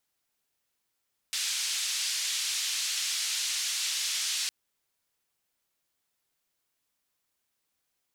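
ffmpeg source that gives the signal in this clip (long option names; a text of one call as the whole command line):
ffmpeg -f lavfi -i "anoisesrc=color=white:duration=3.16:sample_rate=44100:seed=1,highpass=frequency=3000,lowpass=frequency=6300,volume=-18.2dB" out.wav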